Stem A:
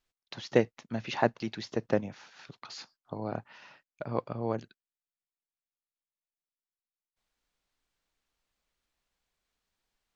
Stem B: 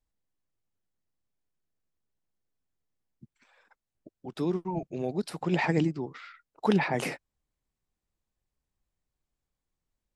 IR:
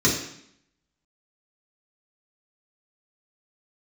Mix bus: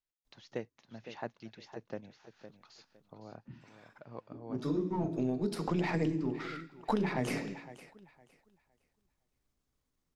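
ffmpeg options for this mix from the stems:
-filter_complex "[0:a]volume=-14.5dB,asplit=3[link_01][link_02][link_03];[link_02]volume=-10.5dB[link_04];[1:a]aeval=exprs='if(lt(val(0),0),0.708*val(0),val(0))':channel_layout=same,adelay=250,volume=3dB,asplit=3[link_05][link_06][link_07];[link_06]volume=-22.5dB[link_08];[link_07]volume=-23dB[link_09];[link_03]apad=whole_len=459023[link_10];[link_05][link_10]sidechaincompress=threshold=-58dB:ratio=8:attack=16:release=368[link_11];[2:a]atrim=start_sample=2205[link_12];[link_08][link_12]afir=irnorm=-1:irlink=0[link_13];[link_04][link_09]amix=inputs=2:normalize=0,aecho=0:1:510|1020|1530|2040:1|0.23|0.0529|0.0122[link_14];[link_01][link_11][link_13][link_14]amix=inputs=4:normalize=0,acompressor=threshold=-29dB:ratio=5"

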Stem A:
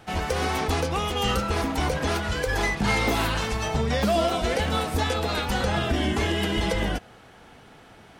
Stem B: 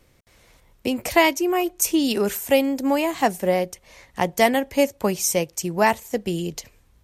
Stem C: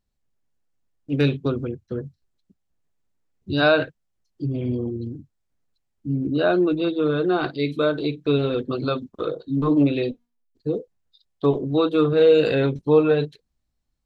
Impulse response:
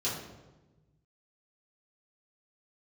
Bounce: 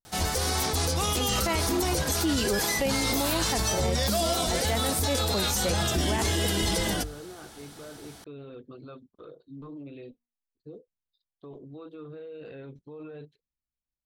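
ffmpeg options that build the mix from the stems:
-filter_complex "[0:a]equalizer=frequency=83:width_type=o:width=0.77:gain=4.5,bandreject=frequency=50:width_type=h:width=6,bandreject=frequency=100:width_type=h:width=6,aexciter=amount=2.2:drive=9.6:freq=3800,adelay=50,volume=-1.5dB[link_01];[1:a]adelay=300,volume=-3dB[link_02];[2:a]acrossover=split=3300[link_03][link_04];[link_04]acompressor=threshold=-52dB:ratio=4:attack=1:release=60[link_05];[link_03][link_05]amix=inputs=2:normalize=0,alimiter=limit=-17.5dB:level=0:latency=1:release=10,volume=-19dB,asplit=2[link_06][link_07];[link_07]apad=whole_len=323645[link_08];[link_02][link_08]sidechaincompress=threshold=-47dB:ratio=8:attack=16:release=221[link_09];[link_01][link_09][link_06]amix=inputs=3:normalize=0,alimiter=limit=-17.5dB:level=0:latency=1:release=11"

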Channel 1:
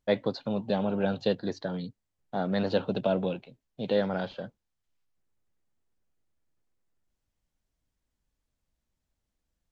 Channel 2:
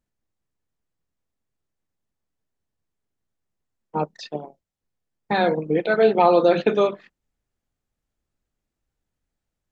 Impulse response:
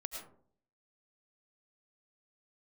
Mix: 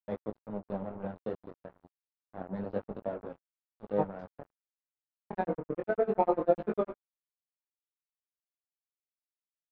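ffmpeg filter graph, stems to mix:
-filter_complex "[0:a]bandreject=frequency=60:width_type=h:width=6,bandreject=frequency=120:width_type=h:width=6,bandreject=frequency=180:width_type=h:width=6,bandreject=frequency=240:width_type=h:width=6,bandreject=frequency=300:width_type=h:width=6,volume=-3dB,asplit=2[link_01][link_02];[link_02]volume=-19.5dB[link_03];[1:a]aeval=exprs='val(0)*pow(10,-31*(0.5-0.5*cos(2*PI*10*n/s))/20)':channel_layout=same,volume=-1.5dB,asplit=2[link_04][link_05];[link_05]volume=-11dB[link_06];[2:a]atrim=start_sample=2205[link_07];[link_03][link_06]amix=inputs=2:normalize=0[link_08];[link_08][link_07]afir=irnorm=-1:irlink=0[link_09];[link_01][link_04][link_09]amix=inputs=3:normalize=0,flanger=delay=18.5:depth=4.5:speed=0.29,aeval=exprs='sgn(val(0))*max(abs(val(0))-0.0133,0)':channel_layout=same,lowpass=1100"

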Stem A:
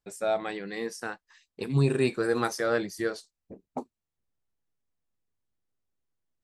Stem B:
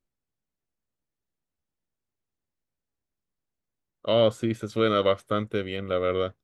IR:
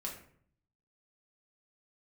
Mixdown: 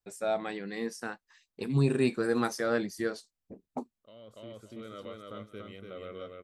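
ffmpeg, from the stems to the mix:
-filter_complex "[0:a]volume=-3dB,asplit=2[link_01][link_02];[1:a]highshelf=frequency=11000:gain=9.5,alimiter=limit=-17dB:level=0:latency=1:release=37,volume=-16.5dB,asplit=2[link_03][link_04];[link_04]volume=-4dB[link_05];[link_02]apad=whole_len=283714[link_06];[link_03][link_06]sidechaincompress=threshold=-45dB:ratio=4:attack=16:release=1370[link_07];[link_05]aecho=0:1:288|576|864|1152:1|0.25|0.0625|0.0156[link_08];[link_01][link_07][link_08]amix=inputs=3:normalize=0,adynamicequalizer=threshold=0.00316:dfrequency=230:dqfactor=3.2:tfrequency=230:tqfactor=3.2:attack=5:release=100:ratio=0.375:range=3.5:mode=boostabove:tftype=bell"

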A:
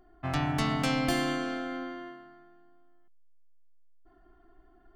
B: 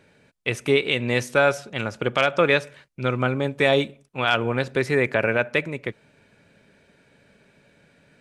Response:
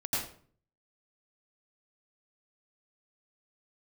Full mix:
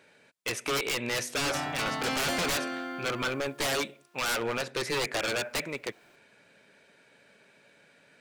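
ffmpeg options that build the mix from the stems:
-filter_complex "[0:a]acrusher=bits=10:mix=0:aa=0.000001,adelay=1200,volume=-0.5dB,asplit=2[link_01][link_02];[link_02]volume=-14dB[link_03];[1:a]asoftclip=type=tanh:threshold=-7dB,volume=0.5dB[link_04];[2:a]atrim=start_sample=2205[link_05];[link_03][link_05]afir=irnorm=-1:irlink=0[link_06];[link_01][link_04][link_06]amix=inputs=3:normalize=0,highpass=frequency=560:poles=1,aeval=exprs='0.0668*(abs(mod(val(0)/0.0668+3,4)-2)-1)':channel_layout=same"

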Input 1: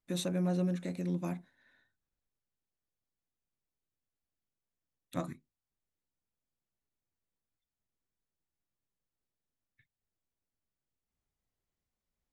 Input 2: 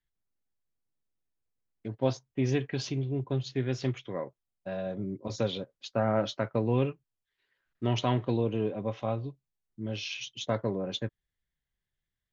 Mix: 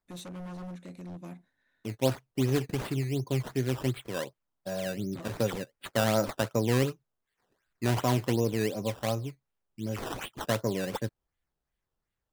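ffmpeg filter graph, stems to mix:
ffmpeg -i stem1.wav -i stem2.wav -filter_complex "[0:a]aeval=exprs='0.0316*(abs(mod(val(0)/0.0316+3,4)-2)-1)':channel_layout=same,volume=-6.5dB[link_01];[1:a]acrusher=samples=14:mix=1:aa=0.000001:lfo=1:lforange=14:lforate=2.7,volume=1dB[link_02];[link_01][link_02]amix=inputs=2:normalize=0" out.wav

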